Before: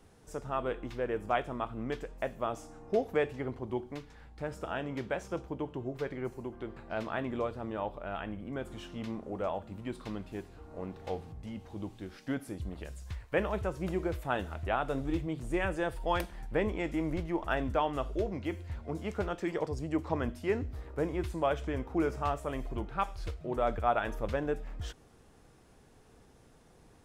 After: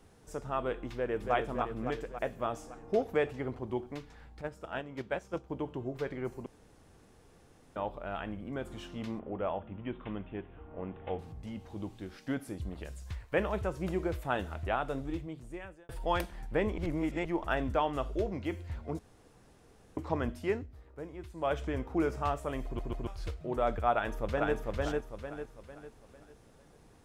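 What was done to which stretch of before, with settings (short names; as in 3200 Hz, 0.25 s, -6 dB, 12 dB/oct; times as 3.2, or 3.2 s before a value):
0.92–1.34 echo throw 0.28 s, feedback 65%, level -5 dB
4.41–5.5 gate -36 dBFS, range -8 dB
6.46–7.76 room tone
9.19–11.19 steep low-pass 3400 Hz 96 dB/oct
14.64–15.89 fade out
16.78–17.25 reverse
18.99–19.97 room tone
20.48–21.53 dip -11 dB, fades 0.19 s
22.65 stutter in place 0.14 s, 3 plays
23.92–24.55 echo throw 0.45 s, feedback 40%, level -1.5 dB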